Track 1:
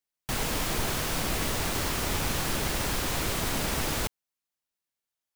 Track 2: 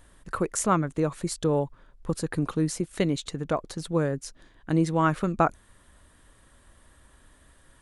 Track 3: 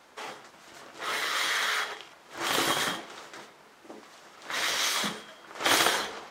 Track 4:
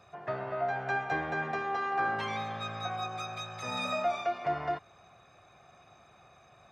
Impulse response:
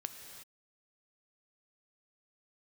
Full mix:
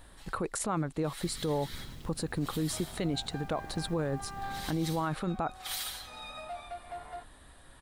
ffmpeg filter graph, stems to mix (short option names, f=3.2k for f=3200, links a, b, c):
-filter_complex "[0:a]acrossover=split=290[a][b];[b]acompressor=threshold=-46dB:ratio=10[c];[a][c]amix=inputs=2:normalize=0,adelay=950,volume=-11dB[d];[1:a]volume=1.5dB[e];[2:a]aderivative,aecho=1:1:6.1:0.79,volume=-10.5dB[f];[3:a]lowshelf=f=290:g=-11,asoftclip=type=hard:threshold=-26.5dB,adelay=2450,volume=-11.5dB[g];[e][f][g]amix=inputs=3:normalize=0,equalizer=f=800:t=o:w=0.33:g=6,equalizer=f=4k:t=o:w=0.33:g=6,equalizer=f=6.3k:t=o:w=0.33:g=-6,alimiter=limit=-17dB:level=0:latency=1:release=28,volume=0dB[h];[d][h]amix=inputs=2:normalize=0,alimiter=limit=-22.5dB:level=0:latency=1:release=192"